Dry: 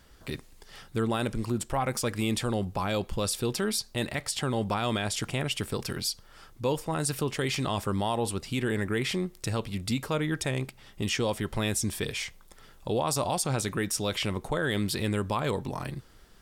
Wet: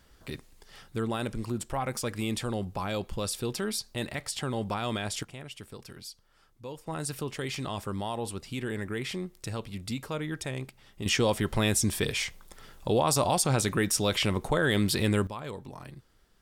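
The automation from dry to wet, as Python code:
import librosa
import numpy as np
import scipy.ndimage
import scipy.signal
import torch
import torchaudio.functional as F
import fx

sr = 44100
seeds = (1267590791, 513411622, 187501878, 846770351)

y = fx.gain(x, sr, db=fx.steps((0.0, -3.0), (5.23, -13.0), (6.87, -5.0), (11.06, 3.0), (15.27, -9.5)))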